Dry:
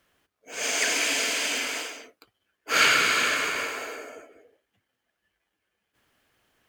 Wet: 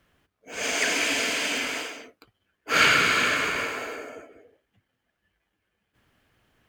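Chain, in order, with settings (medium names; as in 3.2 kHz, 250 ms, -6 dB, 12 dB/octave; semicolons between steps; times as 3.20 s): tone controls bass +8 dB, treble -5 dB; trim +1.5 dB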